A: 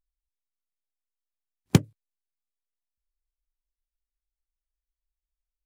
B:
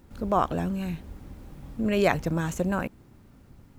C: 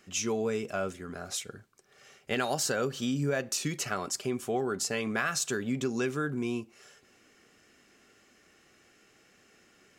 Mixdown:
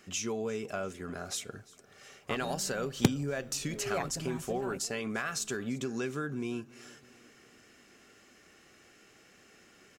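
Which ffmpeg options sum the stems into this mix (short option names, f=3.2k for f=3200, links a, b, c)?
-filter_complex "[0:a]acompressor=threshold=-22dB:ratio=6,adelay=1300,volume=1dB[a];[1:a]aecho=1:1:7.3:0.95,adelay=1900,volume=-16dB[b];[2:a]acompressor=threshold=-39dB:ratio=2,volume=2.5dB,asplit=3[c][d][e];[d]volume=-22dB[f];[e]apad=whole_len=251104[g];[b][g]sidechaingate=range=-33dB:threshold=-46dB:ratio=16:detection=peak[h];[f]aecho=0:1:346|692|1038|1384|1730|2076|2422:1|0.48|0.23|0.111|0.0531|0.0255|0.0122[i];[a][h][c][i]amix=inputs=4:normalize=0"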